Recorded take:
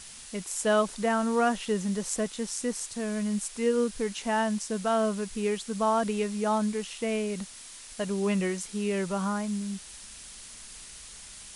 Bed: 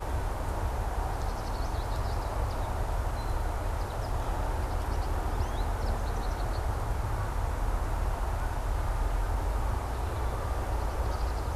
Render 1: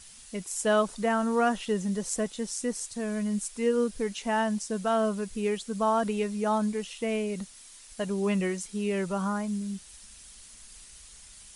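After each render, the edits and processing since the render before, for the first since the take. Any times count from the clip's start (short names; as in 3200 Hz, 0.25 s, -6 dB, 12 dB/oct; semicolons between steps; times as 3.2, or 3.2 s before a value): denoiser 7 dB, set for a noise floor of -46 dBFS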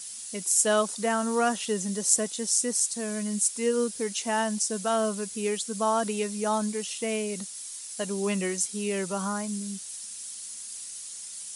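HPF 180 Hz 12 dB/oct; tone controls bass 0 dB, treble +12 dB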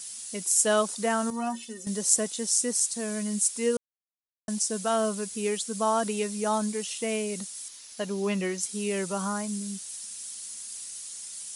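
1.3–1.87 metallic resonator 110 Hz, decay 0.23 s, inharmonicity 0.03; 3.77–4.48 mute; 7.68–8.63 bell 8600 Hz -11.5 dB 0.65 oct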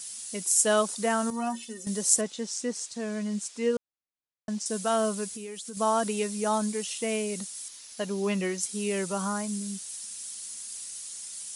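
2.21–4.66 air absorption 110 m; 5.32–5.77 compressor 12:1, threshold -35 dBFS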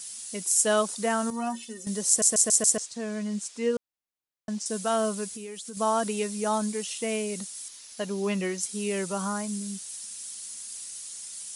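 2.08 stutter in place 0.14 s, 5 plays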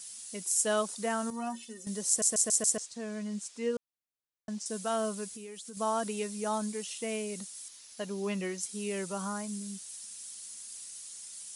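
gain -5.5 dB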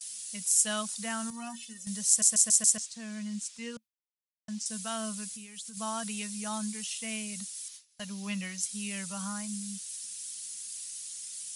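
gate with hold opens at -38 dBFS; EQ curve 220 Hz 0 dB, 330 Hz -25 dB, 530 Hz -10 dB, 2700 Hz +4 dB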